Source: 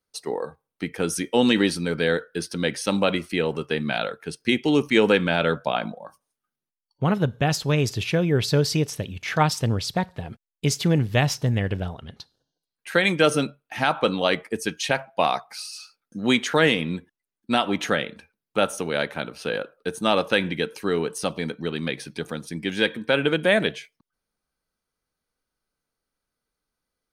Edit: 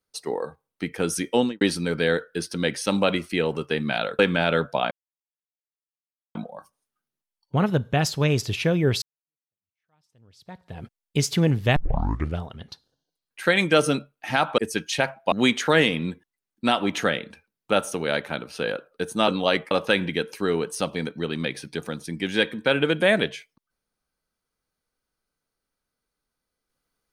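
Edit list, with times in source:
1.33–1.61 s: studio fade out
4.19–5.11 s: delete
5.83 s: insert silence 1.44 s
8.50–10.31 s: fade in exponential
11.24 s: tape start 0.63 s
14.06–14.49 s: move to 20.14 s
15.23–16.18 s: delete

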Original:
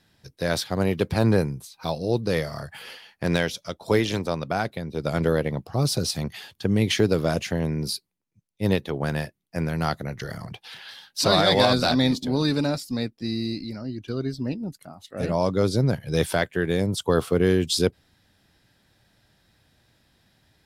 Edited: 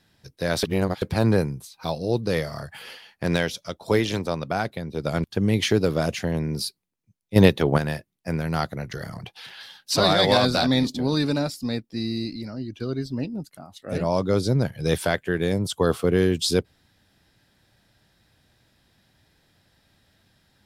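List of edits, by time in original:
0.63–1.02 s: reverse
5.24–6.52 s: delete
8.64–9.06 s: gain +7.5 dB

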